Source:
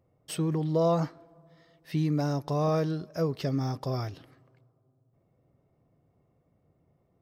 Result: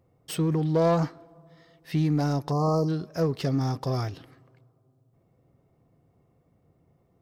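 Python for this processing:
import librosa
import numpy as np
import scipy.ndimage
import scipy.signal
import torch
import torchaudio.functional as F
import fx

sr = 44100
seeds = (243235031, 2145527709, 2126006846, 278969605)

p1 = fx.self_delay(x, sr, depth_ms=0.079)
p2 = np.clip(p1, -10.0 ** (-27.5 / 20.0), 10.0 ** (-27.5 / 20.0))
p3 = p1 + F.gain(torch.from_numpy(p2), -9.5).numpy()
p4 = fx.spec_box(p3, sr, start_s=2.51, length_s=0.37, low_hz=1300.0, high_hz=4100.0, gain_db=-28)
p5 = fx.notch(p4, sr, hz=600.0, q=12.0)
y = F.gain(torch.from_numpy(p5), 1.5).numpy()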